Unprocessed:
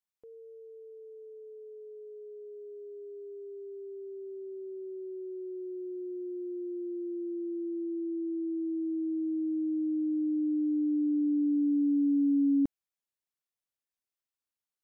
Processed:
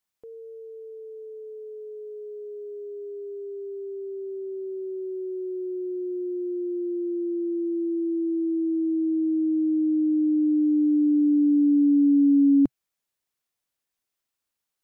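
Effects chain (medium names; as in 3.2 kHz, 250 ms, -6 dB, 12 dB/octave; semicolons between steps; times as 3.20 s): dynamic bell 130 Hz, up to -6 dB, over -56 dBFS, Q 3.7; trim +8 dB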